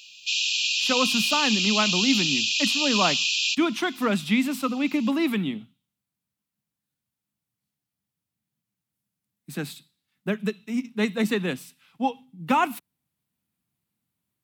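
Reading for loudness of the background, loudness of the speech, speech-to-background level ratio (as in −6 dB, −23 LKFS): −22.0 LKFS, −26.5 LKFS, −4.5 dB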